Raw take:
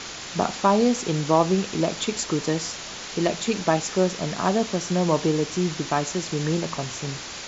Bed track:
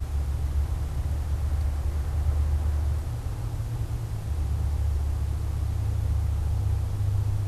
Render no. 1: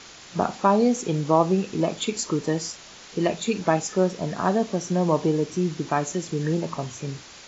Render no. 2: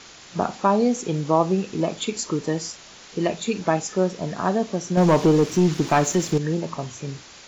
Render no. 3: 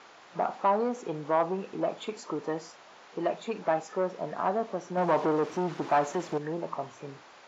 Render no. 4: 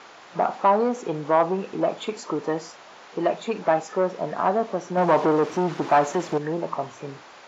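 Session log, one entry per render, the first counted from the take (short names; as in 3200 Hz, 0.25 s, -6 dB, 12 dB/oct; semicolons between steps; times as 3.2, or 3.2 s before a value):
noise print and reduce 9 dB
4.97–6.38 sample leveller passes 2
soft clip -16 dBFS, distortion -13 dB; band-pass 840 Hz, Q 1
gain +6.5 dB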